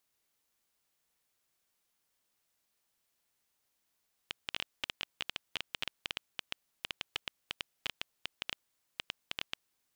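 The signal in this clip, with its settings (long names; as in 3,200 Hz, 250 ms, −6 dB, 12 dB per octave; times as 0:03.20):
Geiger counter clicks 9.1 per second −16.5 dBFS 5.36 s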